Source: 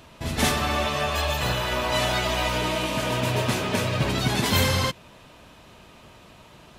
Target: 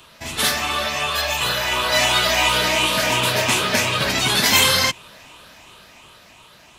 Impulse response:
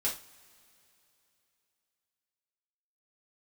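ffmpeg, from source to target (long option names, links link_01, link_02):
-filter_complex "[0:a]afftfilt=real='re*pow(10,6/40*sin(2*PI*(0.66*log(max(b,1)*sr/1024/100)/log(2)-(2.8)*(pts-256)/sr)))':imag='im*pow(10,6/40*sin(2*PI*(0.66*log(max(b,1)*sr/1024/100)/log(2)-(2.8)*(pts-256)/sr)))':win_size=1024:overlap=0.75,acrossover=split=160|1200|7300[link_01][link_02][link_03][link_04];[link_01]alimiter=level_in=4.5dB:limit=-24dB:level=0:latency=1,volume=-4.5dB[link_05];[link_05][link_02][link_03][link_04]amix=inputs=4:normalize=0,tiltshelf=frequency=830:gain=-6,dynaudnorm=framelen=370:gausssize=9:maxgain=7.5dB"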